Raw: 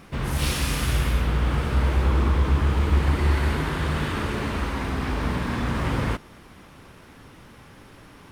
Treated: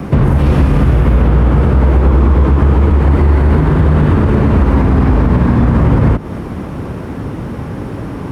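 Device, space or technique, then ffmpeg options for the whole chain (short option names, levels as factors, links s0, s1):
mastering chain: -filter_complex "[0:a]highpass=52,equalizer=f=3600:t=o:w=0.77:g=-2,acrossover=split=210|490|1200|3300[s0][s1][s2][s3][s4];[s0]acompressor=threshold=0.0398:ratio=4[s5];[s1]acompressor=threshold=0.0112:ratio=4[s6];[s2]acompressor=threshold=0.0126:ratio=4[s7];[s3]acompressor=threshold=0.0112:ratio=4[s8];[s4]acompressor=threshold=0.00251:ratio=4[s9];[s5][s6][s7][s8][s9]amix=inputs=5:normalize=0,acompressor=threshold=0.02:ratio=2,tiltshelf=f=1100:g=9.5,alimiter=level_in=9.44:limit=0.891:release=50:level=0:latency=1,volume=0.891"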